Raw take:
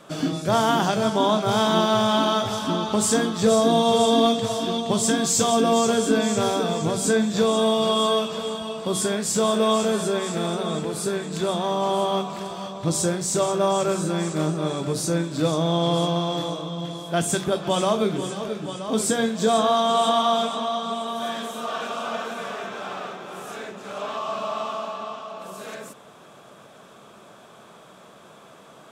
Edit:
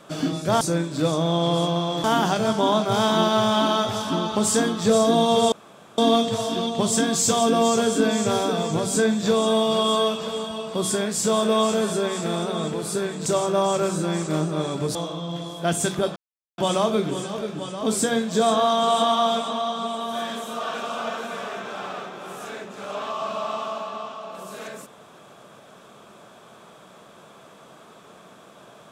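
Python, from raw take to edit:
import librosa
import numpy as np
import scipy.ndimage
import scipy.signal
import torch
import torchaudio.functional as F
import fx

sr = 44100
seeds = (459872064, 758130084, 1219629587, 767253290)

y = fx.edit(x, sr, fx.insert_room_tone(at_s=4.09, length_s=0.46),
    fx.cut(start_s=11.37, length_s=1.95),
    fx.move(start_s=15.01, length_s=1.43, to_s=0.61),
    fx.insert_silence(at_s=17.65, length_s=0.42), tone=tone)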